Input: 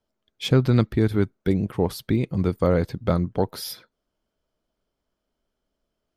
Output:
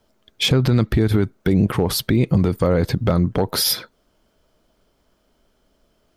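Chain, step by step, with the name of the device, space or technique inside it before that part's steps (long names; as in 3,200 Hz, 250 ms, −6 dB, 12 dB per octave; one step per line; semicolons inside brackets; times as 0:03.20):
loud club master (downward compressor 2 to 1, threshold −25 dBFS, peak gain reduction 7 dB; hard clipping −15 dBFS, distortion −31 dB; boost into a limiter +23.5 dB)
level −7.5 dB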